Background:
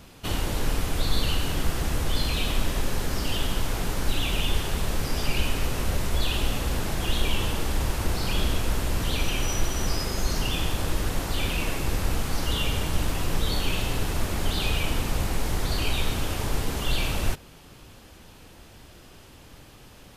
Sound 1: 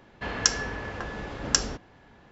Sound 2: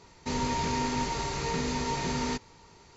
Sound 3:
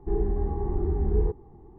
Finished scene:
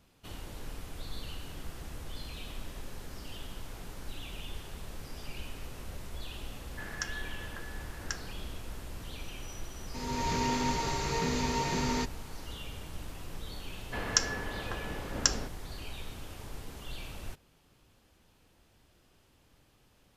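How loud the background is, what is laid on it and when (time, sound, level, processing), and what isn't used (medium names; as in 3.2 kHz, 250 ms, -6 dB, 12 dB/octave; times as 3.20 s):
background -16.5 dB
6.56 s: add 1 -17.5 dB + peaking EQ 1.7 kHz +11 dB
9.68 s: add 2 -12 dB + level rider
13.71 s: add 1 -4 dB
not used: 3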